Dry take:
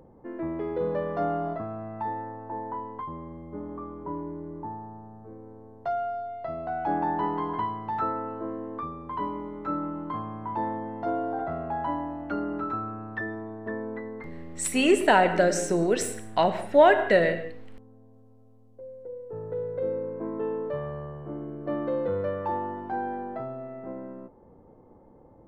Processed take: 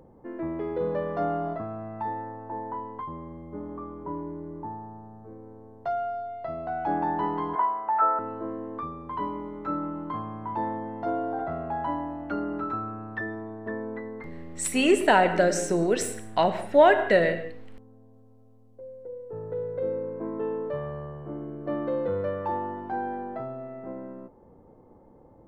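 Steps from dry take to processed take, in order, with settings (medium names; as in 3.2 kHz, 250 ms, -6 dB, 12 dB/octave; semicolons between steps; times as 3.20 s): 7.55–8.19 s: cabinet simulation 480–2300 Hz, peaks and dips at 630 Hz +9 dB, 930 Hz +5 dB, 1.4 kHz +8 dB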